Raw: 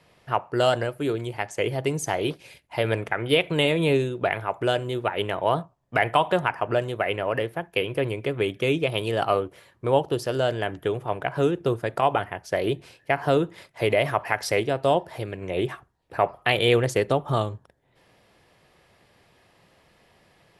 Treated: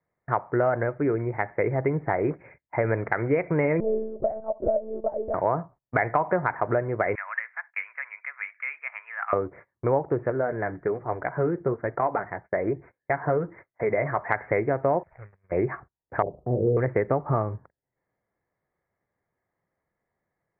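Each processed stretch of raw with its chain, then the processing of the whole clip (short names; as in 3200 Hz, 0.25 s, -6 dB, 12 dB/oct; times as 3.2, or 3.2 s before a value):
3.8–5.34 ladder low-pass 640 Hz, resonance 75% + monotone LPC vocoder at 8 kHz 220 Hz
7.15–9.33 Bessel high-pass 1800 Hz, order 6 + bell 3000 Hz +5.5 dB 2.2 oct + mismatched tape noise reduction encoder only
10.3–14.29 steep low-pass 2400 Hz + flange 1.2 Hz, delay 2.2 ms, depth 4.5 ms, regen -50%
15.03–15.52 median filter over 41 samples + passive tone stack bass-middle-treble 10-0-10 + mismatched tape noise reduction decoder only
16.22–16.77 inverse Chebyshev low-pass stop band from 2200 Hz, stop band 70 dB + doubler 40 ms -4 dB
whole clip: gate -46 dBFS, range -25 dB; steep low-pass 2200 Hz 96 dB/oct; compressor 3:1, threshold -24 dBFS; gain +3.5 dB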